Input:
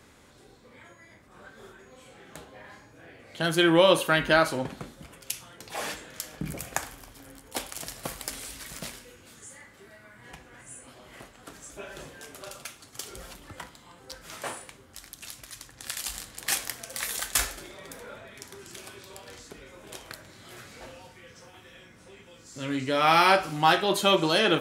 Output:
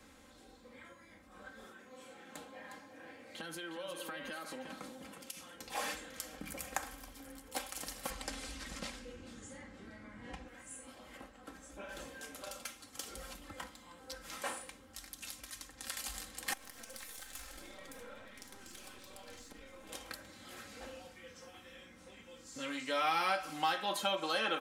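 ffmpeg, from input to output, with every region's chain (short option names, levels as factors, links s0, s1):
-filter_complex "[0:a]asettb=1/sr,asplit=3[s0][s1][s2];[s0]atrim=end=1.644[s3];[s1]atrim=start=1.64:end=5.55,asetpts=PTS-STARTPTS,afade=t=in:d=0.004:c=qsin,afade=t=out:st=3.906:d=0.004:c=qsin,highpass=130,acompressor=threshold=0.0178:ratio=12:attack=3.2:release=140:knee=1:detection=peak,aecho=1:1:359:0.376,atrim=end_sample=172431[s4];[s2]atrim=start=5.546[s5];[s3][s4]acrossfade=d=0.004:c1=hsin:c2=qsin[s6];[s6][s5]acrossfade=d=0.004:c1=qsin:c2=hsin,asettb=1/sr,asplit=3[s7][s8][s9];[s7]atrim=end=8.104[s10];[s8]atrim=start=8.1:end=10.48,asetpts=PTS-STARTPTS,afade=t=in:d=0.004:c=qsin,afade=t=out:st=2.376:d=0.004:c=qsin,lowpass=6900,lowshelf=f=490:g=11[s11];[s9]atrim=start=10.476[s12];[s10][s11]acrossfade=d=0.004:c1=hsin:c2=qsin[s13];[s13][s12]acrossfade=d=0.004:c1=qsin:c2=hsin,asettb=1/sr,asplit=3[s14][s15][s16];[s14]atrim=end=11.174[s17];[s15]atrim=start=11.17:end=11.89,asetpts=PTS-STARTPTS,afade=t=in:d=0.004:c=qsin,afade=t=out:st=0.716:d=0.004:c=qsin,highshelf=f=2600:g=-9,asplit=2[s18][s19];[s19]adelay=15,volume=0.251[s20];[s18][s20]amix=inputs=2:normalize=0,atrim=end_sample=31752[s21];[s16]atrim=start=11.886[s22];[s17][s21]acrossfade=d=0.004:c1=hsin:c2=qsin[s23];[s23][s22]acrossfade=d=0.004:c1=qsin:c2=hsin,asettb=1/sr,asplit=3[s24][s25][s26];[s24]atrim=end=16.534[s27];[s25]atrim=start=16.53:end=19.89,asetpts=PTS-STARTPTS,afade=t=in:d=0.004:c=qsin,afade=t=out:st=3.356:d=0.004:c=qsin,aeval=exprs='if(lt(val(0),0),0.447*val(0),val(0))':c=same,acompressor=threshold=0.00891:ratio=5:attack=3.2:release=140:knee=1:detection=peak[s28];[s26]atrim=start=19.886[s29];[s27][s28]acrossfade=d=0.004:c1=hsin:c2=qsin[s30];[s30][s29]acrossfade=d=0.004:c1=qsin:c2=hsin,aecho=1:1:3.8:0.69,acrossover=split=600|2000[s31][s32][s33];[s31]acompressor=threshold=0.00891:ratio=4[s34];[s32]acompressor=threshold=0.0398:ratio=4[s35];[s33]acompressor=threshold=0.02:ratio=4[s36];[s34][s35][s36]amix=inputs=3:normalize=0,volume=0.531"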